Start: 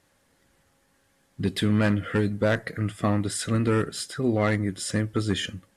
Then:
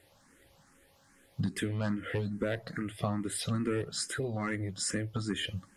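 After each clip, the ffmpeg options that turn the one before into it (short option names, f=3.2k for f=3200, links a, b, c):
-filter_complex "[0:a]acompressor=threshold=-34dB:ratio=4,asplit=2[a][b];[b]afreqshift=2.4[c];[a][c]amix=inputs=2:normalize=1,volume=5.5dB"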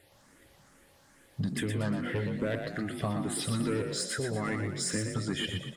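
-filter_complex "[0:a]asplit=2[a][b];[b]asoftclip=type=tanh:threshold=-30.5dB,volume=-3dB[c];[a][c]amix=inputs=2:normalize=0,asplit=7[d][e][f][g][h][i][j];[e]adelay=119,afreqshift=37,volume=-6dB[k];[f]adelay=238,afreqshift=74,volume=-12.7dB[l];[g]adelay=357,afreqshift=111,volume=-19.5dB[m];[h]adelay=476,afreqshift=148,volume=-26.2dB[n];[i]adelay=595,afreqshift=185,volume=-33dB[o];[j]adelay=714,afreqshift=222,volume=-39.7dB[p];[d][k][l][m][n][o][p]amix=inputs=7:normalize=0,volume=-3dB"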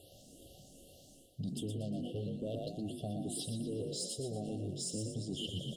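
-af "afftfilt=real='re*(1-between(b*sr/4096,780,2700))':imag='im*(1-between(b*sr/4096,780,2700))':win_size=4096:overlap=0.75,areverse,acompressor=threshold=-43dB:ratio=4,areverse,volume=4.5dB"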